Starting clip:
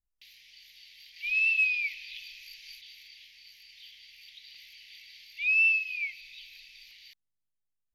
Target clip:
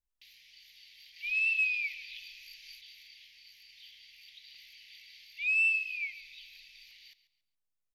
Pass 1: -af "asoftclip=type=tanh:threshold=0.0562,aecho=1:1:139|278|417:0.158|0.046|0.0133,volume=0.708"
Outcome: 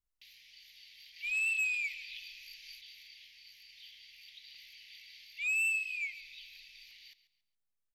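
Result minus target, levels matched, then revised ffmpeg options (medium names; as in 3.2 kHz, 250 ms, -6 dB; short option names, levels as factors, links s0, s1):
saturation: distortion +18 dB
-af "asoftclip=type=tanh:threshold=0.211,aecho=1:1:139|278|417:0.158|0.046|0.0133,volume=0.708"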